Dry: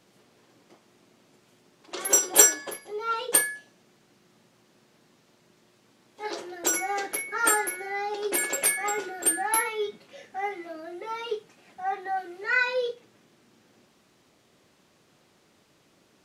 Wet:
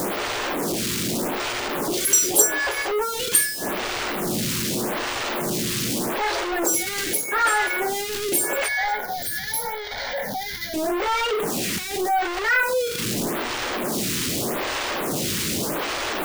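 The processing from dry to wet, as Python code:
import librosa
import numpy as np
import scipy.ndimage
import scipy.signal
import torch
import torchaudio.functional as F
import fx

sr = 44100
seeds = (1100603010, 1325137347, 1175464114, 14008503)

y = x + 0.5 * 10.0 ** (-16.5 / 20.0) * np.sign(x)
y = fx.fixed_phaser(y, sr, hz=1800.0, stages=8, at=(8.68, 10.74))
y = fx.stagger_phaser(y, sr, hz=0.83)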